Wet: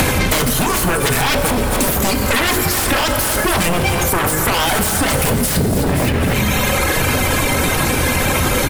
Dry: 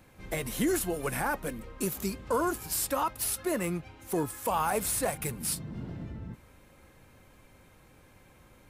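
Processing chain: reverb removal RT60 1.7 s; de-hum 52.09 Hz, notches 11; reverse; compression 10:1, threshold -43 dBFS, peak gain reduction 18.5 dB; reverse; sine folder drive 19 dB, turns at -28.5 dBFS; feedback delay 259 ms, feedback 38%, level -14 dB; on a send at -5 dB: reverberation RT60 2.1 s, pre-delay 6 ms; on the sum: loudness maximiser +29.5 dB; three bands compressed up and down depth 100%; trim -8.5 dB

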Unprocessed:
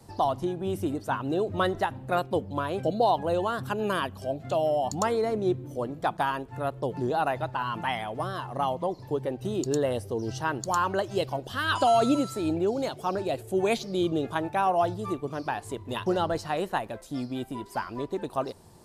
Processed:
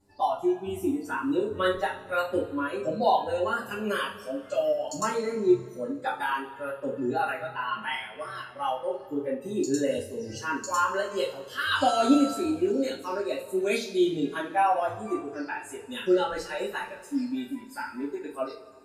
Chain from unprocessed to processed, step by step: mains buzz 100 Hz, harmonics 4, -50 dBFS; spectral noise reduction 16 dB; two-slope reverb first 0.32 s, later 2.2 s, from -20 dB, DRR -9 dB; trim -8 dB

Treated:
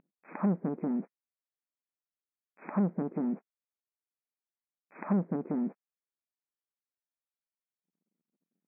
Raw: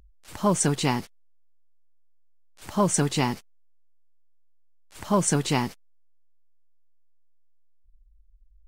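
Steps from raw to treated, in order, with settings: low-pass that closes with the level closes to 300 Hz, closed at -21 dBFS; waveshaping leveller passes 2; brick-wall FIR band-pass 170–2600 Hz; distance through air 390 m; trim -4 dB

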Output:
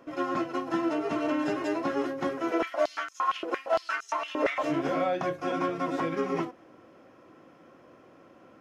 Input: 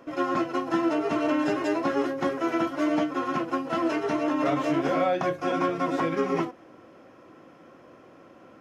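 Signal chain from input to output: 2.51–4.63 s: step-sequenced high-pass 8.7 Hz 440–6500 Hz; trim -3.5 dB

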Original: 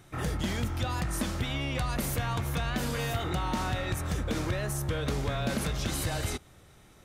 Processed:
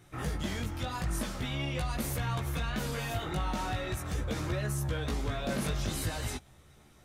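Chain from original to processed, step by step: chorus voices 2, 0.44 Hz, delay 17 ms, depth 3.4 ms

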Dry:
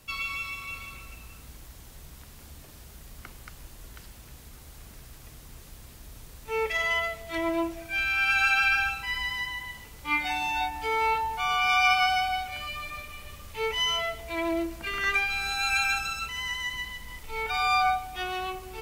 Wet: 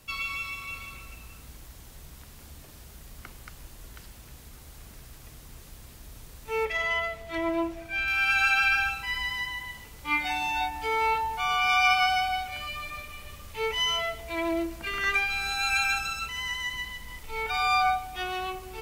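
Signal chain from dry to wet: 6.65–8.08 s: treble shelf 4.8 kHz -8 dB

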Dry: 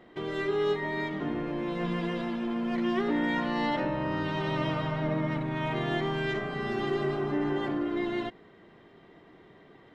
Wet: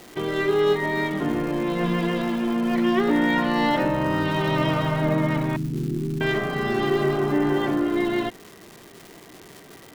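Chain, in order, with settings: 5.56–6.21 s: inverse Chebyshev low-pass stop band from 650 Hz, stop band 40 dB; crackle 460 per s -41 dBFS; trim +7.5 dB

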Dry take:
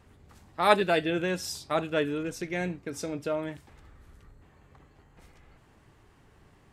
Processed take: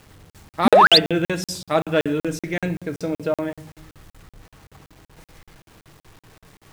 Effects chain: on a send at -9 dB: bass shelf 120 Hz +5.5 dB + reverberation RT60 0.85 s, pre-delay 6 ms; 0.65–0.98 s: on the sum: painted sound rise 200–5100 Hz -16 dBFS; 2.83–3.53 s: treble shelf 4.3 kHz -9 dB; in parallel at -7 dB: hard clipper -17.5 dBFS, distortion -9 dB; on the sum: bit crusher 9-bit; crackling interface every 0.19 s, samples 2048, zero, from 0.30 s; trim +3.5 dB

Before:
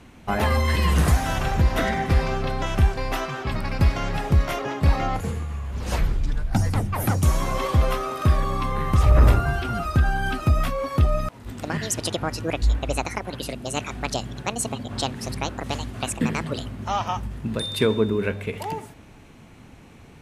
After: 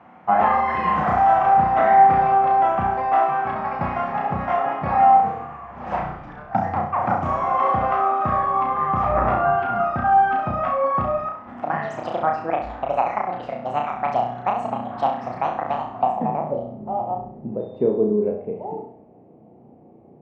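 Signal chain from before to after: cabinet simulation 210–8600 Hz, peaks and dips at 290 Hz -6 dB, 420 Hz -8 dB, 750 Hz +10 dB, 1.5 kHz -8 dB, 4 kHz -5 dB; low-pass sweep 1.4 kHz -> 440 Hz, 15.70–16.76 s; flutter echo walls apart 5.7 m, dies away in 0.53 s

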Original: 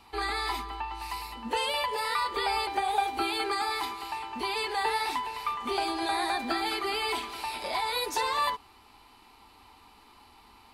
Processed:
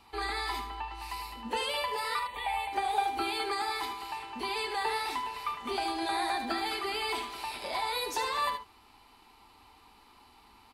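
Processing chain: 2.19–2.73 s: static phaser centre 1.4 kHz, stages 6; delay 77 ms -9.5 dB; trim -3 dB

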